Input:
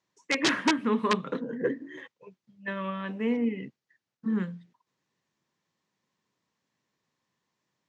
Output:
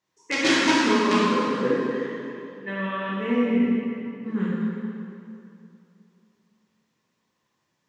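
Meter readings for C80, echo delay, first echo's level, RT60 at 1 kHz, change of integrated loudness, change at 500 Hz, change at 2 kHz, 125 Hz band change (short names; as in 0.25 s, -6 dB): -1.5 dB, none, none, 2.7 s, +5.5 dB, +7.0 dB, +6.5 dB, +6.0 dB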